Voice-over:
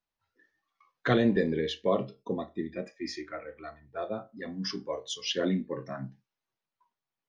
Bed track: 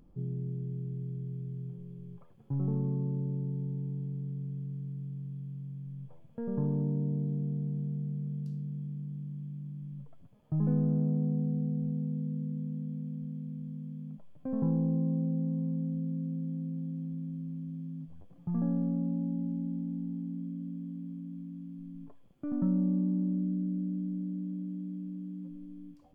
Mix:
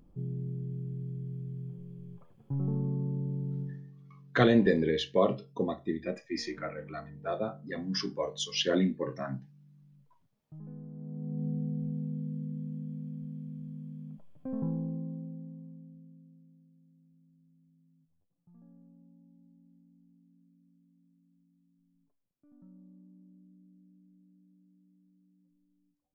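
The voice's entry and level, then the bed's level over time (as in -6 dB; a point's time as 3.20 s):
3.30 s, +1.5 dB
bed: 3.62 s -0.5 dB
3.95 s -17.5 dB
10.92 s -17.5 dB
11.46 s -2 dB
14.49 s -2 dB
16.72 s -27 dB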